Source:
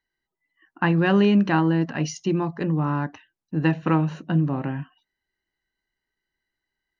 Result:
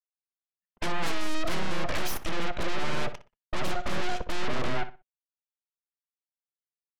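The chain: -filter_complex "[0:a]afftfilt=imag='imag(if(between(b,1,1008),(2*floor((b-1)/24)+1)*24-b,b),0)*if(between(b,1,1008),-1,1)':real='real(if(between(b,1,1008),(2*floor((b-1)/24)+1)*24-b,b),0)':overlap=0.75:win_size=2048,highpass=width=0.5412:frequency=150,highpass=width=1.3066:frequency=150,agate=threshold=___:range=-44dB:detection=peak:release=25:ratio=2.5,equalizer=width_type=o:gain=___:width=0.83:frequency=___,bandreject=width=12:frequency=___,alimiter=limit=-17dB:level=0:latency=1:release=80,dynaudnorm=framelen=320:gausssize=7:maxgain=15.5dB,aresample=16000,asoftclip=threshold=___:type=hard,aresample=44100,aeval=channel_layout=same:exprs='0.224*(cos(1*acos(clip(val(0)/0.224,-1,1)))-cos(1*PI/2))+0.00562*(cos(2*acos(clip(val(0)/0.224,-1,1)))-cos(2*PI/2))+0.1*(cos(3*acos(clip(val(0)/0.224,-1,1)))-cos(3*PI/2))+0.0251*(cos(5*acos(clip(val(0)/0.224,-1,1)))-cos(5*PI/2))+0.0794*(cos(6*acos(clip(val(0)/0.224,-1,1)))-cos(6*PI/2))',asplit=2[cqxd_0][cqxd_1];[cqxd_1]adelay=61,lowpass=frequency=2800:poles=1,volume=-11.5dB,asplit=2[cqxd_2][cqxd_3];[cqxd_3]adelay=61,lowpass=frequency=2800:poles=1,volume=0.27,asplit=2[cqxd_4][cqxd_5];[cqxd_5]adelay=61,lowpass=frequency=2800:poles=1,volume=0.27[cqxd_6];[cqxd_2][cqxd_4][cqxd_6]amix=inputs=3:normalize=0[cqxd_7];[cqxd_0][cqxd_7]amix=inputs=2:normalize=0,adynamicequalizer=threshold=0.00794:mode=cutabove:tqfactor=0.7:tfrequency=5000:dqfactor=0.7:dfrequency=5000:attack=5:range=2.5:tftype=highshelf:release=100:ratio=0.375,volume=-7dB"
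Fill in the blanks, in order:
-43dB, -9.5, 1300, 2400, -18.5dB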